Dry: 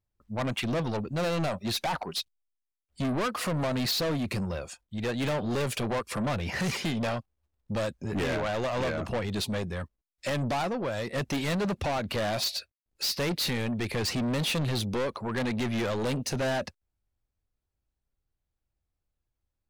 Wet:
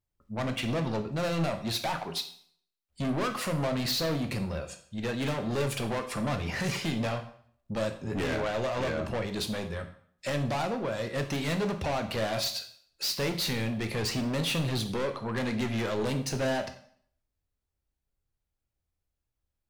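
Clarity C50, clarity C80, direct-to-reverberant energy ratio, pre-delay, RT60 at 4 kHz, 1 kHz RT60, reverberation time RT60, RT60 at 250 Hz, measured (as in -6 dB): 11.0 dB, 14.5 dB, 6.0 dB, 5 ms, 0.55 s, 0.60 s, 0.60 s, 0.60 s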